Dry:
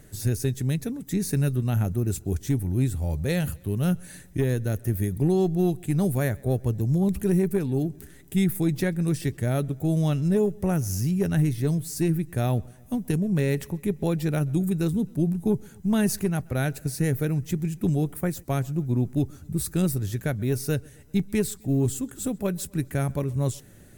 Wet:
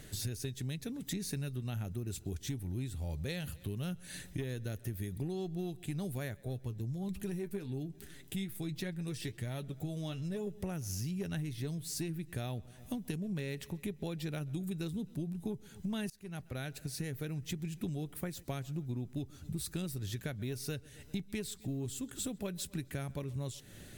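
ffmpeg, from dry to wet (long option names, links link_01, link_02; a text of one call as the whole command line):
ffmpeg -i in.wav -filter_complex "[0:a]asettb=1/sr,asplit=3[link_01][link_02][link_03];[link_01]atrim=end=6.344[link_04];[link_02]atrim=start=6.34:end=10.47,asetpts=PTS-STARTPTS,afade=type=in:duration=0.004:curve=qsin,afade=type=out:start_time=4.126:duration=0.004:curve=qsin,flanger=delay=4.7:depth=5.4:regen=52:speed=1.2:shape=triangular[link_05];[link_03]atrim=start=10.466[link_06];[link_04][link_05]acrossfade=duration=0.004:curve1=hsin:curve2=qsin[link_07];[link_07][link_06]acrossfade=duration=0.004:curve1=qsin:curve2=hsin,asplit=2[link_08][link_09];[link_08]atrim=end=16.1,asetpts=PTS-STARTPTS,afade=type=out:start_time=16.096:duration=0.004:curve=hsin:silence=0.0668344[link_10];[link_09]atrim=start=16.1,asetpts=PTS-STARTPTS,afade=type=in:duration=1.52:silence=0.0668344[link_11];[link_10][link_11]concat=n=2:v=0:a=1,equalizer=frequency=3500:width=0.93:gain=10,acompressor=threshold=-35dB:ratio=5,volume=-1.5dB" out.wav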